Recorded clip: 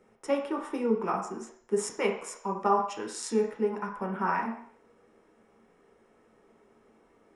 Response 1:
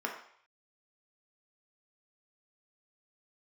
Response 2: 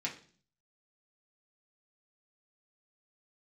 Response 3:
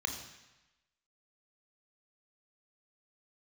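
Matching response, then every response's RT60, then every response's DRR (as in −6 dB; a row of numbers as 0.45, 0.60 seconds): 1; 0.60, 0.45, 1.0 seconds; 0.0, −3.5, 4.0 decibels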